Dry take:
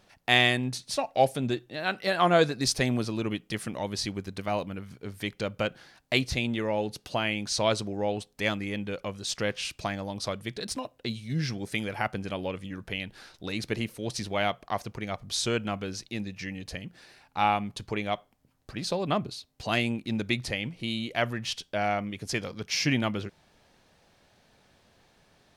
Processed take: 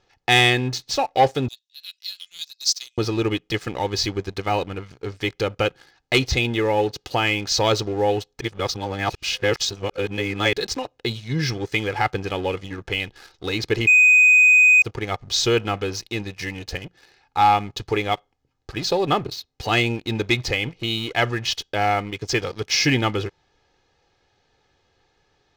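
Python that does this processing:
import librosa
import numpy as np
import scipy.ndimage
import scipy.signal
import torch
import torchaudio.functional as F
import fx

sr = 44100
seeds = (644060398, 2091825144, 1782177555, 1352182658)

y = fx.cheby2_highpass(x, sr, hz=930.0, order=4, stop_db=70, at=(1.48, 2.98))
y = fx.edit(y, sr, fx.reverse_span(start_s=8.41, length_s=2.12),
    fx.bleep(start_s=13.87, length_s=0.95, hz=2500.0, db=-20.0), tone=tone)
y = scipy.signal.sosfilt(scipy.signal.butter(6, 6900.0, 'lowpass', fs=sr, output='sos'), y)
y = y + 0.61 * np.pad(y, (int(2.4 * sr / 1000.0), 0))[:len(y)]
y = fx.leveller(y, sr, passes=2)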